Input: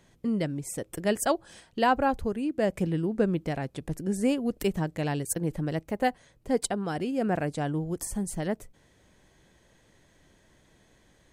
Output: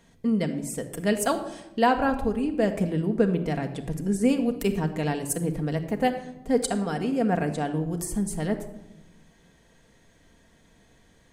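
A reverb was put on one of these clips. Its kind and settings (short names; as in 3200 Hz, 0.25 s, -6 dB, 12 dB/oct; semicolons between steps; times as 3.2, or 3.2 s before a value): shoebox room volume 3400 m³, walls furnished, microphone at 1.7 m; gain +1 dB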